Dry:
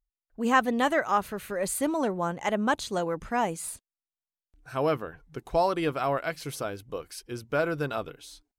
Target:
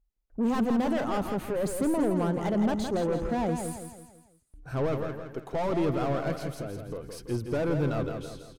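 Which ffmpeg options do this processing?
-filter_complex "[0:a]asettb=1/sr,asplit=3[a][b][c];[a]atrim=end=4.864[d];[b]atrim=start=4.86:end=5.59,asetpts=PTS-STARTPTS,afade=t=in:d=0.004:c=qsin,afade=t=out:st=0.726:d=0.004:c=qsin,highpass=f=490:p=1[e];[c]atrim=start=5.586[f];[d][e]acrossfade=d=0.004:c1=hsin:c2=qsin[g];[g][f]acrossfade=d=0.004:c1=qsin:c2=hsin,aeval=exprs='(tanh(39.8*val(0)+0.2)-tanh(0.2))/39.8':c=same,asettb=1/sr,asplit=3[h][i][j];[h]atrim=end=6.414[k];[i]atrim=start=6.41:end=7.04,asetpts=PTS-STARTPTS,afade=t=in:d=0.004:c=qsin,afade=t=out:st=0.626:d=0.004:c=qsin,acompressor=threshold=-42dB:ratio=6[l];[j]atrim=start=7.036[m];[k][l]acrossfade=d=0.004:c1=hsin:c2=qsin[n];[n][m]acrossfade=d=0.004:c1=qsin:c2=hsin,tiltshelf=f=850:g=7.5,aecho=1:1:166|332|498|664|830:0.473|0.208|0.0916|0.0403|0.0177,volume=3.5dB"

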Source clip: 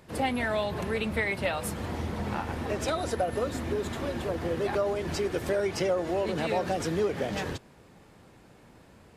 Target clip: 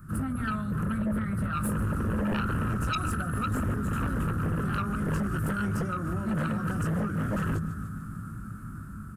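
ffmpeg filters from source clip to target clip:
-filter_complex "[0:a]acrossover=split=660|1700[a][b][c];[a]bandreject=f=81.72:t=h:w=4,bandreject=f=163.44:t=h:w=4,bandreject=f=245.16:t=h:w=4,bandreject=f=326.88:t=h:w=4,bandreject=f=408.6:t=h:w=4,bandreject=f=490.32:t=h:w=4,bandreject=f=572.04:t=h:w=4,bandreject=f=653.76:t=h:w=4,bandreject=f=735.48:t=h:w=4,bandreject=f=817.2:t=h:w=4,bandreject=f=898.92:t=h:w=4,bandreject=f=980.64:t=h:w=4,bandreject=f=1.06236k:t=h:w=4,bandreject=f=1.14408k:t=h:w=4,bandreject=f=1.2258k:t=h:w=4,bandreject=f=1.30752k:t=h:w=4,bandreject=f=1.38924k:t=h:w=4,bandreject=f=1.47096k:t=h:w=4,bandreject=f=1.55268k:t=h:w=4,bandreject=f=1.6344k:t=h:w=4,bandreject=f=1.71612k:t=h:w=4,bandreject=f=1.79784k:t=h:w=4,bandreject=f=1.87956k:t=h:w=4,bandreject=f=1.96128k:t=h:w=4,bandreject=f=2.043k:t=h:w=4,bandreject=f=2.12472k:t=h:w=4,bandreject=f=2.20644k:t=h:w=4,bandreject=f=2.28816k:t=h:w=4[d];[c]alimiter=level_in=6dB:limit=-24dB:level=0:latency=1:release=108,volume=-6dB[e];[d][b][e]amix=inputs=3:normalize=0,highshelf=f=2.5k:g=-10,asplit=2[f][g];[g]aecho=0:1:149|298|447|596|745:0.15|0.0808|0.0436|0.0236|0.0127[h];[f][h]amix=inputs=2:normalize=0,dynaudnorm=f=550:g=7:m=7.5dB,asplit=2[i][j];[j]adelay=19,volume=-6dB[k];[i][k]amix=inputs=2:normalize=0,acompressor=threshold=-33dB:ratio=2,firequalizer=gain_entry='entry(200,0);entry(450,-28);entry(900,-26);entry(1300,6);entry(2000,-22);entry(3800,-22);entry(9500,3)':delay=0.05:min_phase=1,aeval=exprs='0.0668*sin(PI/2*2.82*val(0)/0.0668)':c=same,volume=-1dB"

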